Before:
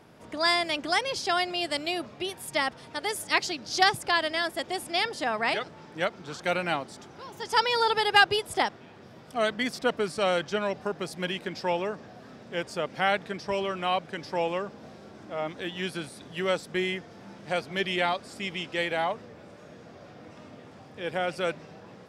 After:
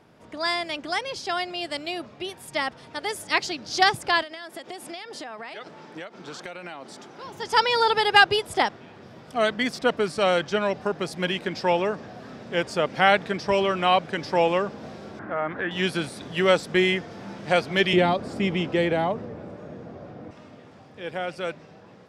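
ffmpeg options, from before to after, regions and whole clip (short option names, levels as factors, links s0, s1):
-filter_complex "[0:a]asettb=1/sr,asplit=3[s0][s1][s2];[s0]atrim=end=4.224[s3];[s1]atrim=start=4.22:end=7.24,asetpts=PTS-STARTPTS,afade=t=in:d=0.004:c=qsin,afade=t=out:st=3.016:d=0.004:c=qsin,highpass=190,acompressor=threshold=0.0158:ratio=16:attack=3.2:release=140:knee=1:detection=peak[s4];[s2]atrim=start=7.236[s5];[s3][s4]acrossfade=d=0.004:c1=hsin:c2=qsin[s6];[s6][s5]acrossfade=d=0.004:c1=qsin:c2=hsin,asettb=1/sr,asplit=3[s7][s8][s9];[s7]atrim=end=15.194[s10];[s8]atrim=start=15.19:end=15.71,asetpts=PTS-STARTPTS,afade=t=in:d=0.004:c=qsin,afade=t=out:st=0.516:d=0.004:c=qsin,lowpass=f=1600:t=q:w=3,acompressor=threshold=0.0224:ratio=2:attack=3.2:release=140:knee=1:detection=peak[s11];[s9]atrim=start=15.706[s12];[s10][s11]acrossfade=d=0.004:c1=hsin:c2=qsin[s13];[s13][s12]acrossfade=d=0.004:c1=qsin:c2=hsin,asettb=1/sr,asplit=3[s14][s15][s16];[s14]atrim=end=17.934[s17];[s15]atrim=start=17.93:end=20.31,asetpts=PTS-STARTPTS,afade=t=in:d=0.004:c=qsin,afade=t=out:st=2.376:d=0.004:c=qsin,tiltshelf=f=1400:g=7,acrossover=split=400|3000[s18][s19][s20];[s19]acompressor=threshold=0.0251:ratio=2.5:attack=3.2:release=140:knee=2.83:detection=peak[s21];[s18][s21][s20]amix=inputs=3:normalize=0[s22];[s16]atrim=start=20.306[s23];[s17][s22]acrossfade=d=0.004:c1=hsin:c2=qsin[s24];[s24][s23]acrossfade=d=0.004:c1=qsin:c2=hsin,highshelf=f=9700:g=-8,dynaudnorm=f=210:g=31:m=3.76,volume=0.841"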